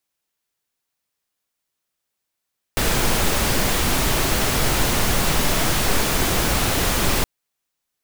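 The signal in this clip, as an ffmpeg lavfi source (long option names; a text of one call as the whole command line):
ffmpeg -f lavfi -i "anoisesrc=color=pink:amplitude=0.575:duration=4.47:sample_rate=44100:seed=1" out.wav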